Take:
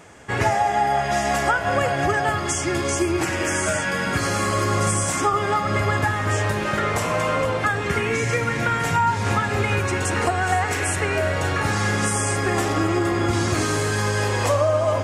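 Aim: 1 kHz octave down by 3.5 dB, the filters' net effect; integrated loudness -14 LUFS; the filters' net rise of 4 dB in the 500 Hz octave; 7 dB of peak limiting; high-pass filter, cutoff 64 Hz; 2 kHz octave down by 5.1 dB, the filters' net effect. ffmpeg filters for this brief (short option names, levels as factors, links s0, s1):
-af "highpass=64,equalizer=f=500:t=o:g=7.5,equalizer=f=1000:t=o:g=-7,equalizer=f=2000:t=o:g=-4.5,volume=2.82,alimiter=limit=0.596:level=0:latency=1"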